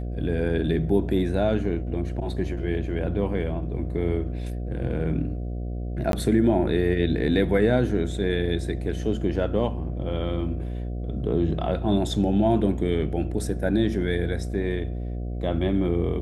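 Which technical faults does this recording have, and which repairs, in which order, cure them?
buzz 60 Hz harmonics 12 -30 dBFS
6.12–6.13 gap 12 ms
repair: de-hum 60 Hz, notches 12; interpolate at 6.12, 12 ms

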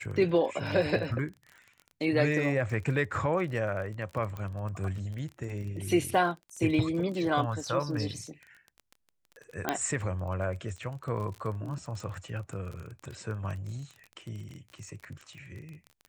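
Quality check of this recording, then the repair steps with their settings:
crackle 29/s -37 dBFS
4.37 pop -26 dBFS
9.69 pop -12 dBFS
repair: de-click

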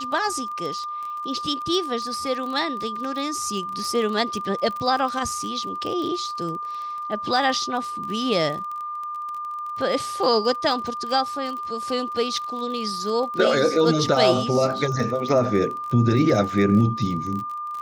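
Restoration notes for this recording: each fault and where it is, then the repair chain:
crackle 29/s -29 dBFS
tone 1200 Hz -28 dBFS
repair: de-click; notch 1200 Hz, Q 30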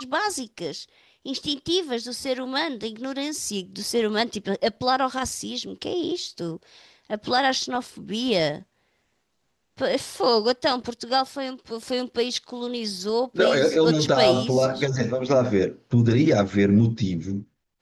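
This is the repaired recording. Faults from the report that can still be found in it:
none

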